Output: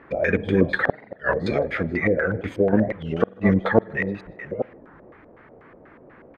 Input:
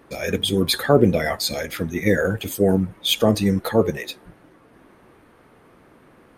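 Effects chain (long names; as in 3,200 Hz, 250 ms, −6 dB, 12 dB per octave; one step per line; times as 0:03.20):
delay that plays each chunk backwards 421 ms, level −12 dB
0:01.54–0:02.73: downward compressor 6 to 1, threshold −21 dBFS, peak gain reduction 9 dB
auto-filter low-pass square 4.1 Hz 600–1,900 Hz
gate with flip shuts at −4 dBFS, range −41 dB
slap from a distant wall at 27 metres, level −29 dB
on a send at −24 dB: convolution reverb RT60 1.5 s, pre-delay 47 ms
on the sum: wow of a warped record 33 1/3 rpm, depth 250 cents
level +1 dB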